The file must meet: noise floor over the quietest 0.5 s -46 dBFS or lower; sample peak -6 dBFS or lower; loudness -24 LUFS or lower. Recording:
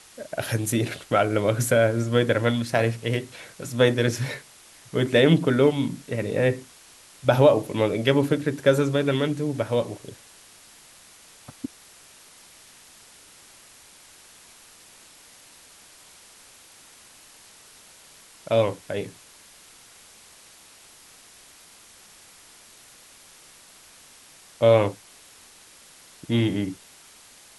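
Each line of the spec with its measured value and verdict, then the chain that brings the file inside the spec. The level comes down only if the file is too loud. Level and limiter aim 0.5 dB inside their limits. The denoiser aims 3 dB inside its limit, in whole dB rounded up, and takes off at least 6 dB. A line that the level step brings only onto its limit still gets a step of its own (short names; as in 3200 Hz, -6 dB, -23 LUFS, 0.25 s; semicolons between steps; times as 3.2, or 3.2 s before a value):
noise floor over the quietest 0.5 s -51 dBFS: OK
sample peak -5.5 dBFS: fail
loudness -23.0 LUFS: fail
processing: gain -1.5 dB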